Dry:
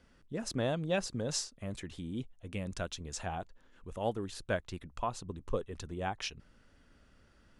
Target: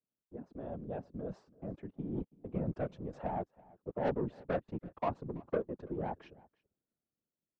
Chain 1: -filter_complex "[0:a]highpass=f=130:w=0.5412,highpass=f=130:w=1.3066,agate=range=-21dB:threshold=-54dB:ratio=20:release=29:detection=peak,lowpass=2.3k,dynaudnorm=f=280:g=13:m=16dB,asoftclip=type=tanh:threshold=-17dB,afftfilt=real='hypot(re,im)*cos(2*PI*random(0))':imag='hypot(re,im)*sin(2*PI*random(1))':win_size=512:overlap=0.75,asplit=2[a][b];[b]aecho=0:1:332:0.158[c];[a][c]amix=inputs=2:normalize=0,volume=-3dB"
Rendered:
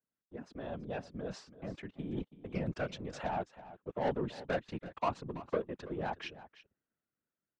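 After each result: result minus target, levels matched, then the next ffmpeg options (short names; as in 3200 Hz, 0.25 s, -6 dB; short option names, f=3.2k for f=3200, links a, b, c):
2000 Hz band +6.5 dB; echo-to-direct +7.5 dB
-filter_complex "[0:a]highpass=f=130:w=0.5412,highpass=f=130:w=1.3066,agate=range=-21dB:threshold=-54dB:ratio=20:release=29:detection=peak,lowpass=740,dynaudnorm=f=280:g=13:m=16dB,asoftclip=type=tanh:threshold=-17dB,afftfilt=real='hypot(re,im)*cos(2*PI*random(0))':imag='hypot(re,im)*sin(2*PI*random(1))':win_size=512:overlap=0.75,asplit=2[a][b];[b]aecho=0:1:332:0.158[c];[a][c]amix=inputs=2:normalize=0,volume=-3dB"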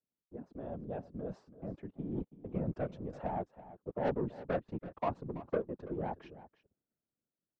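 echo-to-direct +7.5 dB
-filter_complex "[0:a]highpass=f=130:w=0.5412,highpass=f=130:w=1.3066,agate=range=-21dB:threshold=-54dB:ratio=20:release=29:detection=peak,lowpass=740,dynaudnorm=f=280:g=13:m=16dB,asoftclip=type=tanh:threshold=-17dB,afftfilt=real='hypot(re,im)*cos(2*PI*random(0))':imag='hypot(re,im)*sin(2*PI*random(1))':win_size=512:overlap=0.75,asplit=2[a][b];[b]aecho=0:1:332:0.0668[c];[a][c]amix=inputs=2:normalize=0,volume=-3dB"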